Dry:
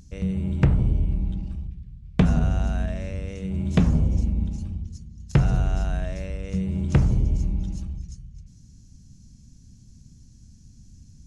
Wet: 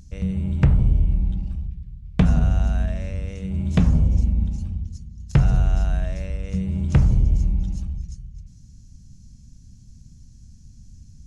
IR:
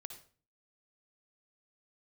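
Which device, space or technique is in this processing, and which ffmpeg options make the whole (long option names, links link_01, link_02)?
low shelf boost with a cut just above: -af "lowshelf=frequency=90:gain=6,equalizer=frequency=350:width_type=o:width=0.85:gain=-4"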